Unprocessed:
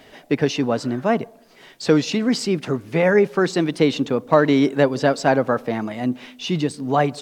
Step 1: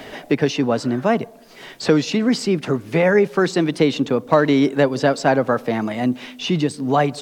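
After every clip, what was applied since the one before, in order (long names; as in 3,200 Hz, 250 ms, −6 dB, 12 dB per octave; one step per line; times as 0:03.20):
multiband upward and downward compressor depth 40%
level +1 dB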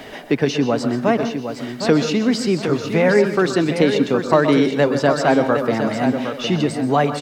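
repeating echo 761 ms, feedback 26%, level −8 dB
convolution reverb RT60 0.30 s, pre-delay 117 ms, DRR 9 dB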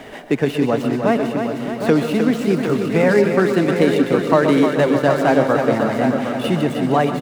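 running median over 9 samples
repeating echo 308 ms, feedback 58%, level −7 dB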